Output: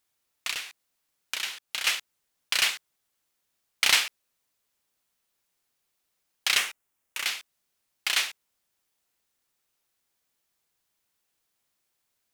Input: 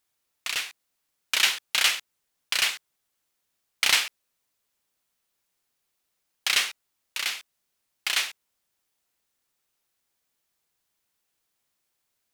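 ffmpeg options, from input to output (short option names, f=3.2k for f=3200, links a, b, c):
-filter_complex "[0:a]asettb=1/sr,asplit=3[a][b][c];[a]atrim=end=0.514[d];[b]atrim=start=0.51:end=1.87,asetpts=PTS-STARTPTS,afade=t=in:d=0.004:c=qsin,afade=t=out:st=1.356:d=0.004:c=qsin,acompressor=threshold=-32dB:ratio=3[e];[c]atrim=start=1.866[f];[d][e]acrossfade=d=0.004:c1=hsin:c2=qsin[g];[g][f]acrossfade=d=0.004:c1=qsin:c2=hsin,asettb=1/sr,asplit=3[h][i][j];[h]atrim=end=6.574[k];[i]atrim=start=6.57:end=7.25,asetpts=PTS-STARTPTS,afade=t=in:d=0.004:c=qsin,afade=t=out:st=0.676:d=0.004:c=qsin,equalizer=f=4.3k:w=1.7:g=-7.5[l];[j]atrim=start=7.246[m];[k][l]acrossfade=d=0.004:c1=hsin:c2=qsin[n];[n][m]acrossfade=d=0.004:c1=qsin:c2=hsin"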